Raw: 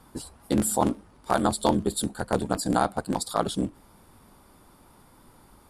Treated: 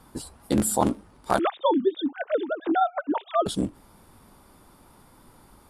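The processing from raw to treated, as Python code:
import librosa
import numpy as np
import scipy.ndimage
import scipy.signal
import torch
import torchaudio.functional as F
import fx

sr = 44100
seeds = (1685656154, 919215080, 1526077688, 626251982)

y = fx.sine_speech(x, sr, at=(1.39, 3.46))
y = y * 10.0 ** (1.0 / 20.0)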